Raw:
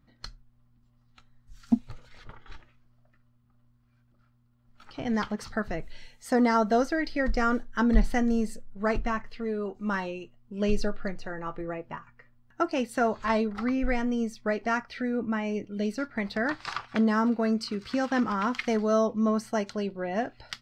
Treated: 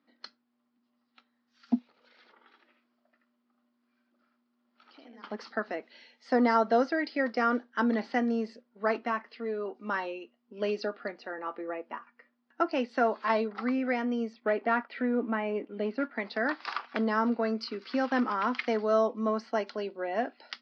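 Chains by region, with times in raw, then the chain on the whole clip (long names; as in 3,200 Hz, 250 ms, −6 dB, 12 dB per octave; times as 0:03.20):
0:01.86–0:05.24: downward compressor 4 to 1, threshold −51 dBFS + single-tap delay 78 ms −3.5 dB
0:14.33–0:16.14: leveller curve on the samples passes 1 + high-frequency loss of the air 300 metres
whole clip: Chebyshev band-pass filter 240–5,100 Hz, order 4; dynamic equaliser 1,000 Hz, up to +3 dB, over −42 dBFS, Q 0.74; level −2 dB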